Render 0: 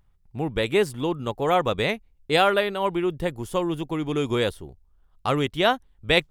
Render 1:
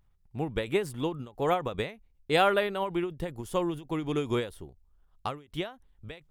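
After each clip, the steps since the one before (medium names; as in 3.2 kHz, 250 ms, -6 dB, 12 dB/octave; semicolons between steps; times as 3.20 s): dynamic bell 4.9 kHz, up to -4 dB, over -39 dBFS, Q 0.93; endings held to a fixed fall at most 160 dB/s; trim -3.5 dB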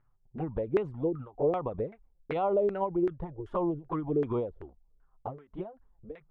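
touch-sensitive flanger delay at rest 8.4 ms, full sweep at -25 dBFS; peak limiter -22.5 dBFS, peak gain reduction 9 dB; LFO low-pass saw down 2.6 Hz 380–1700 Hz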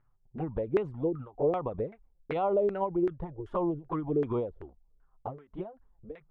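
no audible change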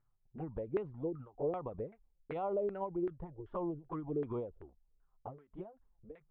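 distance through air 250 m; trim -7.5 dB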